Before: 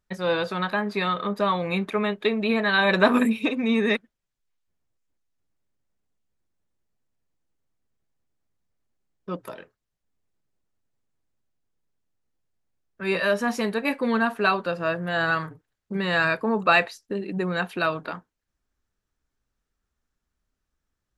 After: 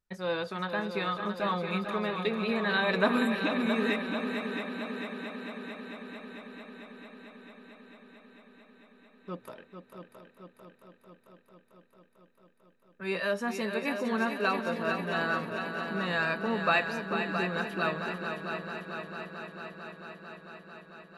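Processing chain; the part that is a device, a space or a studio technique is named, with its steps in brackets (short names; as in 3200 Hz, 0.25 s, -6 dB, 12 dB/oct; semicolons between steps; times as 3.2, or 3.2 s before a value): multi-head tape echo (multi-head echo 0.223 s, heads second and third, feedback 71%, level -8 dB; wow and flutter 14 cents); gain -7.5 dB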